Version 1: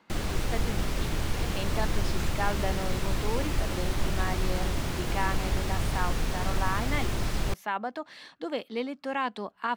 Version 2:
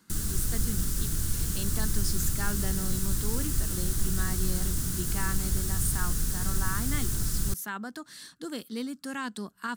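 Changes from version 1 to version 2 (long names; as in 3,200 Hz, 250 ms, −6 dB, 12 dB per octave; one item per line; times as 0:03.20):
speech +5.5 dB
master: add drawn EQ curve 170 Hz 0 dB, 400 Hz −9 dB, 570 Hz −18 dB, 840 Hz −18 dB, 1,500 Hz −5 dB, 2,300 Hz −15 dB, 8,900 Hz +13 dB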